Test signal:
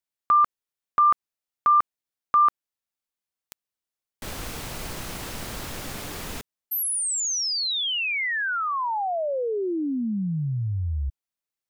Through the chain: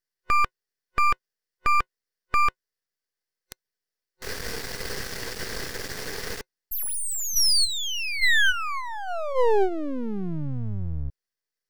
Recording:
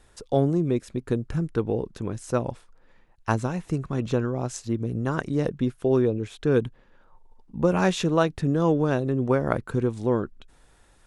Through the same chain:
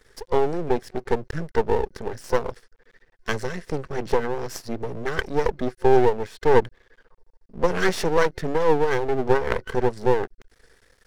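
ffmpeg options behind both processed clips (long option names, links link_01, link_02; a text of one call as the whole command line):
ffmpeg -i in.wav -af "superequalizer=7b=3.16:9b=0.631:11b=3.16:14b=2.82,aeval=exprs='max(val(0),0)':channel_layout=same,volume=1.5dB" out.wav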